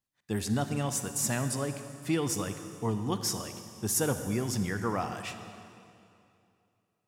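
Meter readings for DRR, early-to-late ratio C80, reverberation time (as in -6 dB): 8.5 dB, 9.5 dB, 2.6 s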